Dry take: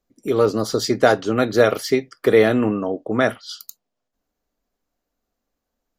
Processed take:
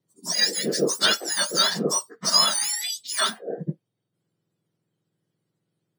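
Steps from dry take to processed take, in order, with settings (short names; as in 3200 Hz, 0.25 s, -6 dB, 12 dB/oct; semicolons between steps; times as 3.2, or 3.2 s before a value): spectrum mirrored in octaves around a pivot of 1500 Hz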